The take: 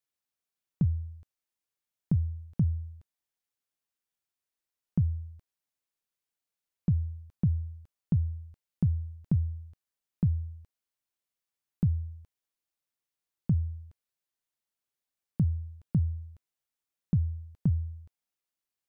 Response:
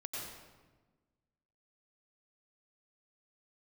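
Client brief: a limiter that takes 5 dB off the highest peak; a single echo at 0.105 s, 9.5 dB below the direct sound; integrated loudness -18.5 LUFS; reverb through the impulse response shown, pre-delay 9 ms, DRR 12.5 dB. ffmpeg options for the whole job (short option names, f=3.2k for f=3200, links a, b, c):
-filter_complex "[0:a]alimiter=limit=-22.5dB:level=0:latency=1,aecho=1:1:105:0.335,asplit=2[a][b];[1:a]atrim=start_sample=2205,adelay=9[c];[b][c]afir=irnorm=-1:irlink=0,volume=-12.5dB[d];[a][d]amix=inputs=2:normalize=0,volume=15.5dB"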